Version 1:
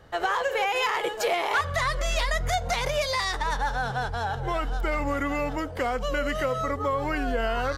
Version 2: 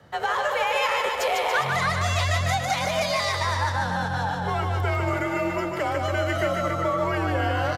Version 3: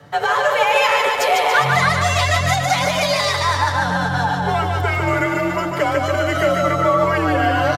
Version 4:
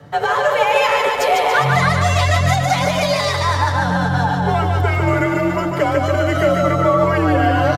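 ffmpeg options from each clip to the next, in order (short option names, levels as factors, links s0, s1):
-filter_complex "[0:a]afreqshift=48,asplit=2[s0][s1];[s1]aecho=0:1:150|285|406.5|515.8|614.3:0.631|0.398|0.251|0.158|0.1[s2];[s0][s2]amix=inputs=2:normalize=0"
-af "aecho=1:1:6.9:0.65,volume=2"
-af "tiltshelf=f=640:g=3.5,volume=1.19"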